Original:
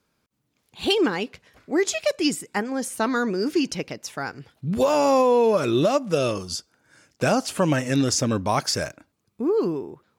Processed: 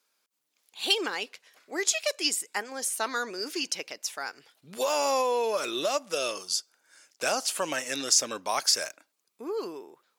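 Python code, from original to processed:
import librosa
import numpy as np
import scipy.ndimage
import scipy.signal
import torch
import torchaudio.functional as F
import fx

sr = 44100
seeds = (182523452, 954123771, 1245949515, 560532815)

y = scipy.signal.sosfilt(scipy.signal.butter(2, 490.0, 'highpass', fs=sr, output='sos'), x)
y = fx.high_shelf(y, sr, hz=2600.0, db=10.5)
y = y * 10.0 ** (-6.5 / 20.0)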